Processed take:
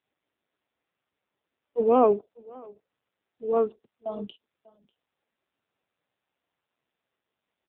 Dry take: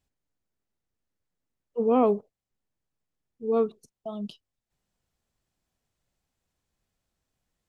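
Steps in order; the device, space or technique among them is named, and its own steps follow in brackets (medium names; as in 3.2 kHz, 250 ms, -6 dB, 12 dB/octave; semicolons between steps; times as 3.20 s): satellite phone (band-pass 300–3300 Hz; delay 593 ms -21.5 dB; trim +4.5 dB; AMR-NB 5.9 kbps 8 kHz)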